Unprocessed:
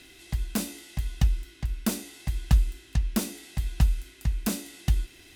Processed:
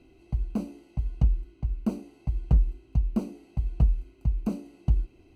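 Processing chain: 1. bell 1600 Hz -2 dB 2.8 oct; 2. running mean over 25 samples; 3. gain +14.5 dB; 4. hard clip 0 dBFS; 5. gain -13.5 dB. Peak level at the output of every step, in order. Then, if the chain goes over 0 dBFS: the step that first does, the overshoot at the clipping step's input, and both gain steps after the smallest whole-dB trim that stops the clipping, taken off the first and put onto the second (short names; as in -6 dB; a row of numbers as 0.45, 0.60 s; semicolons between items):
-9.5, -10.0, +4.5, 0.0, -13.5 dBFS; step 3, 4.5 dB; step 3 +9.5 dB, step 5 -8.5 dB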